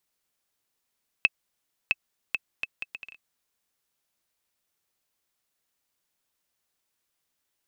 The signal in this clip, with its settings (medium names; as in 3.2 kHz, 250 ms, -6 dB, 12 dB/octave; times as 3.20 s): bouncing ball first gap 0.66 s, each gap 0.66, 2.61 kHz, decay 33 ms -6 dBFS